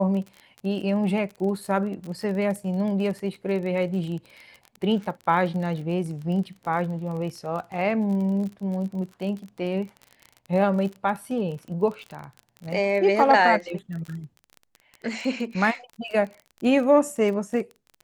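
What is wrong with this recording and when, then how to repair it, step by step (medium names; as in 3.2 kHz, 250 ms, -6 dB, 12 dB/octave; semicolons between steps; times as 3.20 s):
crackle 31 per s -32 dBFS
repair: de-click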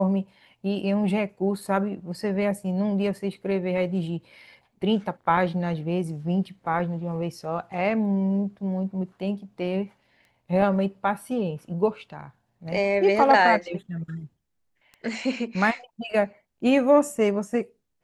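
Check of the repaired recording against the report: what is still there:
nothing left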